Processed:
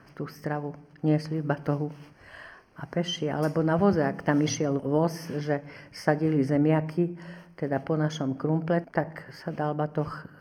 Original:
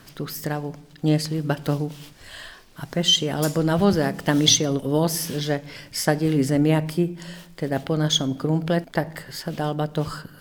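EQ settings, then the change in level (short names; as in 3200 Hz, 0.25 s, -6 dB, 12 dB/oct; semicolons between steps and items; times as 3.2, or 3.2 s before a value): running mean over 12 samples; HPF 44 Hz; low shelf 450 Hz -5 dB; 0.0 dB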